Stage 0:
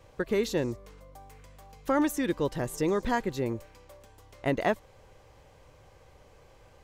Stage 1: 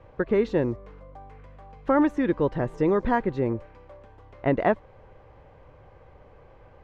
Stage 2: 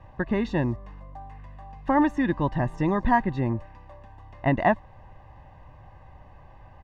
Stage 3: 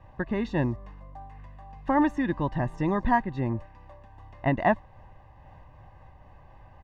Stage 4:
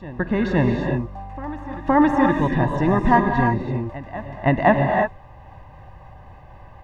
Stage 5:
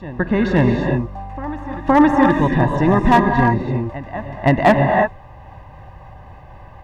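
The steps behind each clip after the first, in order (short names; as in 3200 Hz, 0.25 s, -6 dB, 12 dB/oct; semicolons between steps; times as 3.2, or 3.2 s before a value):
LPF 1800 Hz 12 dB/oct; gain +5 dB
comb 1.1 ms, depth 76%
noise-modulated level, depth 50%
reverse echo 0.516 s -16.5 dB; non-linear reverb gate 0.36 s rising, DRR 2 dB; gain +6.5 dB
one-sided clip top -8.5 dBFS; gain +4 dB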